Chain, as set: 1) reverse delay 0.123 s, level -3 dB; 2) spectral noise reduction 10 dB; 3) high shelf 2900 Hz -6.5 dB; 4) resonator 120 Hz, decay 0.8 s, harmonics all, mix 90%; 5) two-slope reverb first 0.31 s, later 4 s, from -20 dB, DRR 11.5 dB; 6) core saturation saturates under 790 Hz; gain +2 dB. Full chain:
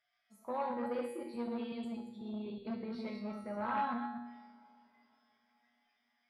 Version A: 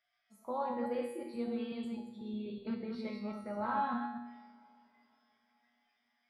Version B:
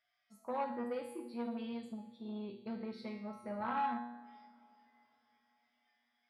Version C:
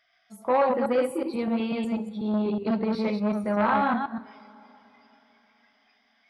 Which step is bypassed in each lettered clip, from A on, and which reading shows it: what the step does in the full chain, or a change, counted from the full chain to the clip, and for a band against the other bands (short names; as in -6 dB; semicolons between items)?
6, momentary loudness spread change -2 LU; 1, momentary loudness spread change +2 LU; 4, 125 Hz band +2.5 dB